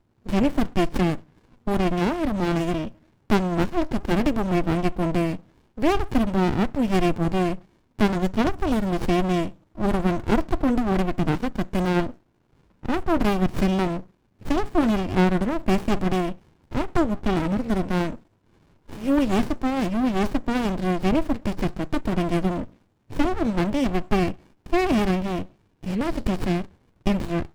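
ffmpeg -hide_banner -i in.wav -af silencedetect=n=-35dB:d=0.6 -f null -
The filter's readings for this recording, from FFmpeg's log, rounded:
silence_start: 12.11
silence_end: 12.83 | silence_duration: 0.72
silence_start: 18.16
silence_end: 18.89 | silence_duration: 0.73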